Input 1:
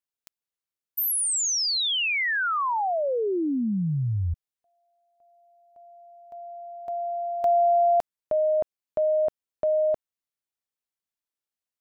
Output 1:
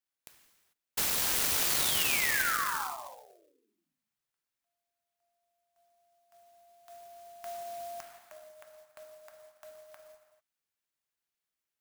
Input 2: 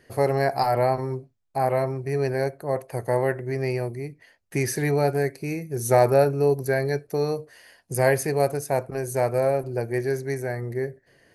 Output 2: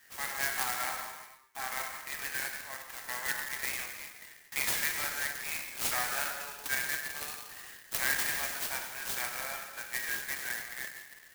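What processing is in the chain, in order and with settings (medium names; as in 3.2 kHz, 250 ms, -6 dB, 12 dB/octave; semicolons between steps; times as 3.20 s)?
high-pass 1.4 kHz 24 dB/octave; gated-style reverb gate 470 ms falling, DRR 1 dB; compression 6:1, threshold -27 dBFS; sampling jitter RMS 0.065 ms; trim +1.5 dB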